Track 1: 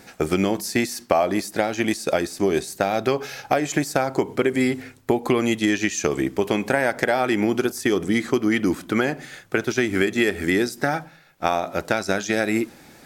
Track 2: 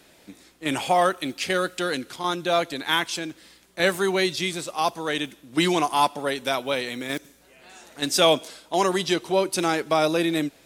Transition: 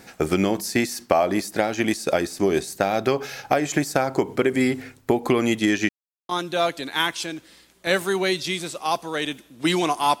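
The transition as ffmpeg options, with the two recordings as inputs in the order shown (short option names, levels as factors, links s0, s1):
-filter_complex "[0:a]apad=whole_dur=10.2,atrim=end=10.2,asplit=2[s0][s1];[s0]atrim=end=5.89,asetpts=PTS-STARTPTS,afade=t=out:st=5.886:d=0.004:c=hsin[s2];[s1]atrim=start=5.89:end=6.29,asetpts=PTS-STARTPTS,volume=0[s3];[1:a]atrim=start=2.22:end=6.13,asetpts=PTS-STARTPTS,afade=t=in:d=0.004:c=hsin[s4];[s2][s3][s4]concat=n=3:v=0:a=1"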